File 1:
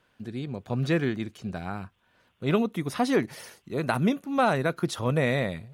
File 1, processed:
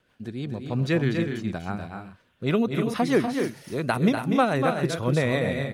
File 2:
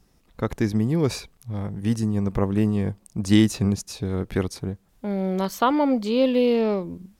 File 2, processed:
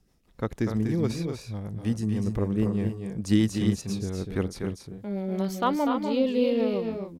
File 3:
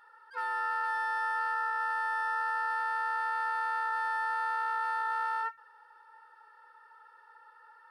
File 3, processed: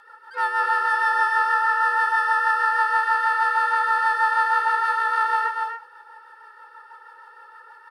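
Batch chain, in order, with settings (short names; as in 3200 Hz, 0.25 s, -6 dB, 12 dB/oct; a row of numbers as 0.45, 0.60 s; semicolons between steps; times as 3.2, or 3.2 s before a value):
hard clip -5.5 dBFS; rotary speaker horn 6.3 Hz; tapped delay 0.244/0.28 s -6.5/-9 dB; normalise peaks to -9 dBFS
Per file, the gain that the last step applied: +3.0, -4.0, +13.5 dB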